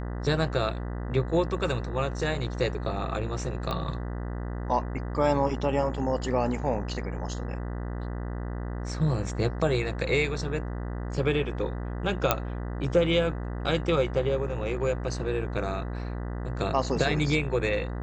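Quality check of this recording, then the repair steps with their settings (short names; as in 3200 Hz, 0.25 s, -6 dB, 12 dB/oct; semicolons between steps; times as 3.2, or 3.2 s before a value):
buzz 60 Hz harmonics 33 -33 dBFS
3.71 pop -18 dBFS
12.31 pop -5 dBFS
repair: de-click; de-hum 60 Hz, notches 33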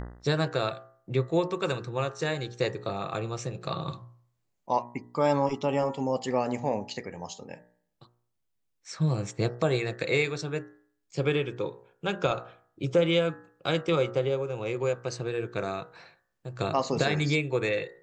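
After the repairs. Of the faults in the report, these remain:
none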